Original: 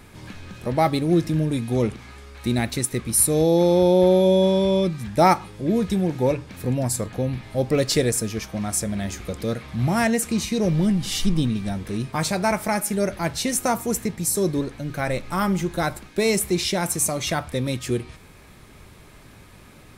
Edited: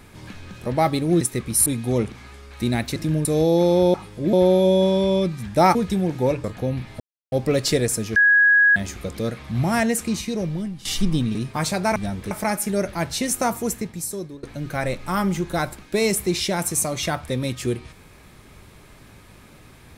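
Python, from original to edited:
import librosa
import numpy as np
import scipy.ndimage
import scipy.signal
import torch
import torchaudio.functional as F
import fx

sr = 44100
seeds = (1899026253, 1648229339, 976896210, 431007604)

y = fx.edit(x, sr, fx.swap(start_s=1.21, length_s=0.29, other_s=2.8, other_length_s=0.45),
    fx.move(start_s=5.36, length_s=0.39, to_s=3.94),
    fx.cut(start_s=6.44, length_s=0.56),
    fx.insert_silence(at_s=7.56, length_s=0.32),
    fx.bleep(start_s=8.4, length_s=0.6, hz=1660.0, db=-11.5),
    fx.fade_out_to(start_s=10.25, length_s=0.84, floor_db=-15.0),
    fx.move(start_s=11.59, length_s=0.35, to_s=12.55),
    fx.fade_out_to(start_s=13.83, length_s=0.84, floor_db=-20.5), tone=tone)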